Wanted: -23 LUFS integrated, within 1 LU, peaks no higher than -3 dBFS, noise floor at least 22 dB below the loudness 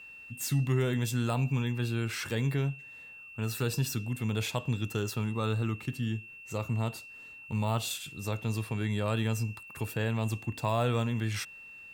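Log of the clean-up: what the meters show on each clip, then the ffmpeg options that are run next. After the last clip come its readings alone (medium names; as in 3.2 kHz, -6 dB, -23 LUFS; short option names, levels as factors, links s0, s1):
steady tone 2.7 kHz; tone level -46 dBFS; loudness -32.0 LUFS; peak level -16.0 dBFS; loudness target -23.0 LUFS
-> -af "bandreject=f=2700:w=30"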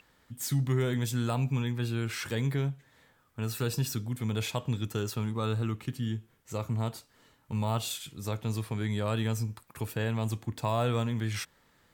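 steady tone not found; loudness -32.5 LUFS; peak level -16.0 dBFS; loudness target -23.0 LUFS
-> -af "volume=2.99"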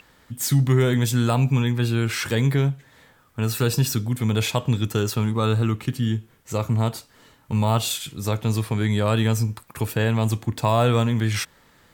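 loudness -22.5 LUFS; peak level -6.5 dBFS; noise floor -57 dBFS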